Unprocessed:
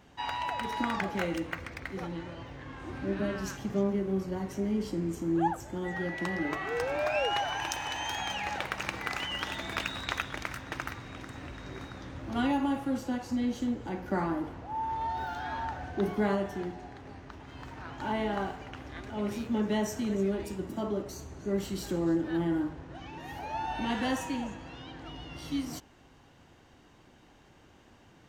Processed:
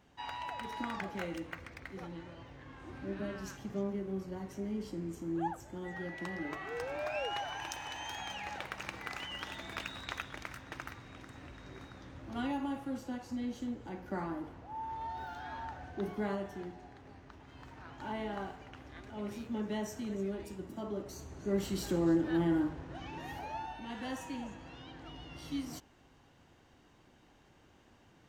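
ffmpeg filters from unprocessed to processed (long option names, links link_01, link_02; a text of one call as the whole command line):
ffmpeg -i in.wav -af "volume=7.5dB,afade=type=in:start_time=20.84:duration=0.91:silence=0.446684,afade=type=out:start_time=23.21:duration=0.6:silence=0.237137,afade=type=in:start_time=23.81:duration=0.87:silence=0.398107" out.wav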